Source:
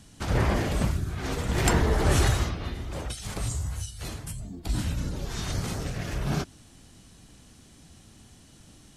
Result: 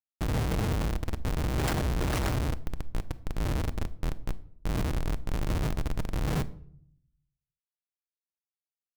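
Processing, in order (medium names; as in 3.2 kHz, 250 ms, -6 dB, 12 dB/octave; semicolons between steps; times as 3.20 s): dynamic bell 280 Hz, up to -4 dB, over -36 dBFS, Q 0.85; Schmitt trigger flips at -26 dBFS; simulated room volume 1000 m³, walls furnished, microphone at 0.53 m; trim +2 dB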